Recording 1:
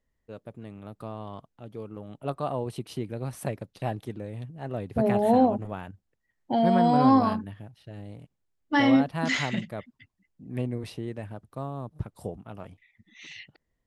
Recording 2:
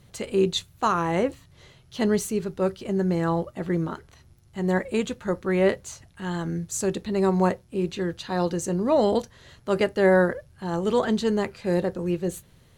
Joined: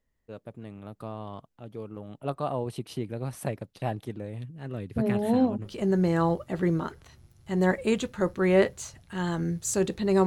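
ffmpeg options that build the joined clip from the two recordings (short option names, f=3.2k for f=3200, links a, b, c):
-filter_complex "[0:a]asettb=1/sr,asplit=3[a][b][c];[a]atrim=end=4.384[d];[b]atrim=start=4.38:end=5.71,asetpts=PTS-STARTPTS,afade=t=in:d=0.004:c=qsin,afade=t=out:st=1.326:d=0.004:c=qsin,equalizer=f=730:t=o:w=0.9:g=-11[e];[c]atrim=start=5.706[f];[d][e]acrossfade=d=0.004:c1=hsin:c2=qsin[g];[g][f]acrossfade=d=0.004:c1=qsin:c2=hsin,apad=whole_dur=10.26,atrim=end=10.26,atrim=end=5.71,asetpts=PTS-STARTPTS[h];[1:a]atrim=start=2.7:end=7.33,asetpts=PTS-STARTPTS[i];[h][i]acrossfade=d=0.08:c1=tri:c2=tri"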